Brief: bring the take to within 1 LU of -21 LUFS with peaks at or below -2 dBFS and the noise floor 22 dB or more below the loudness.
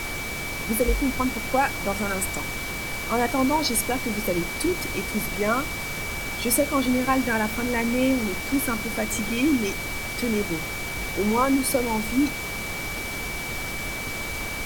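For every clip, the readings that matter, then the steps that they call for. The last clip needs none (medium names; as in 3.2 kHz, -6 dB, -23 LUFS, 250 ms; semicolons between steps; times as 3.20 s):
steady tone 2.3 kHz; tone level -32 dBFS; noise floor -31 dBFS; noise floor target -47 dBFS; loudness -25.0 LUFS; peak level -7.0 dBFS; loudness target -21.0 LUFS
-> band-stop 2.3 kHz, Q 30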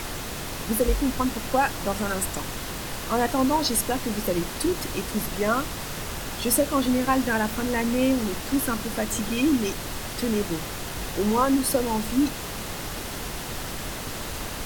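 steady tone not found; noise floor -34 dBFS; noise floor target -48 dBFS
-> noise print and reduce 14 dB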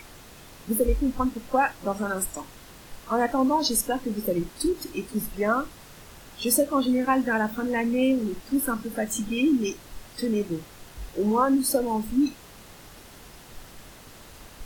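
noise floor -48 dBFS; loudness -25.5 LUFS; peak level -7.5 dBFS; loudness target -21.0 LUFS
-> trim +4.5 dB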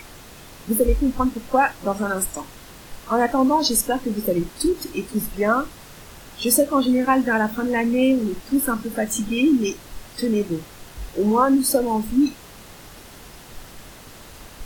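loudness -21.0 LUFS; peak level -3.0 dBFS; noise floor -43 dBFS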